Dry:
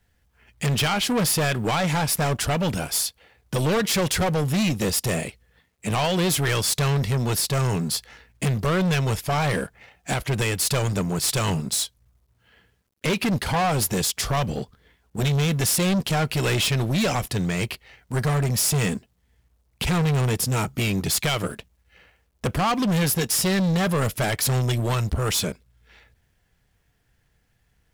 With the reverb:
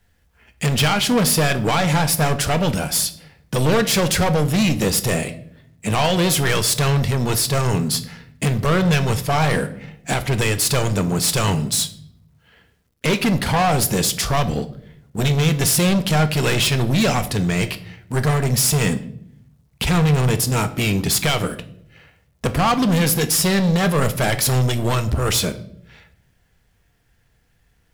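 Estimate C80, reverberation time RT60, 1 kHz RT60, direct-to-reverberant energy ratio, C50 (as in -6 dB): 18.0 dB, 0.70 s, 0.55 s, 10.0 dB, 15.0 dB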